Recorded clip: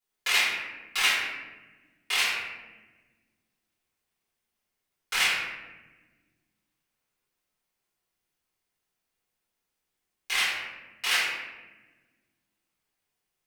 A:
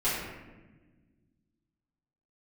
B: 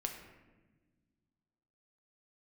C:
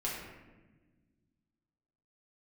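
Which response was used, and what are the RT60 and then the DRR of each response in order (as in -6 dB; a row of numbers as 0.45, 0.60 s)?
A; 1.2, 1.3, 1.2 s; -14.0, 2.0, -7.0 dB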